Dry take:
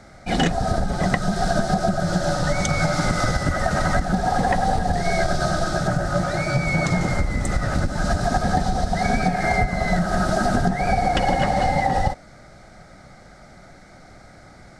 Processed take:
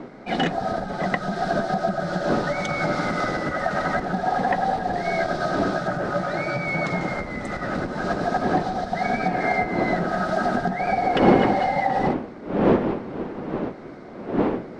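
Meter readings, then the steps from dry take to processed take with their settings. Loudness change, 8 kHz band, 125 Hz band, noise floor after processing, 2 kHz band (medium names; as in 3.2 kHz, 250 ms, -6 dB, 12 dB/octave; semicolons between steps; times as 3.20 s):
-2.0 dB, -13.0 dB, -7.0 dB, -38 dBFS, -1.0 dB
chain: wind noise 340 Hz -24 dBFS; three-band isolator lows -18 dB, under 180 Hz, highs -17 dB, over 4.2 kHz; reverse; upward compressor, threshold -34 dBFS; reverse; trim -1 dB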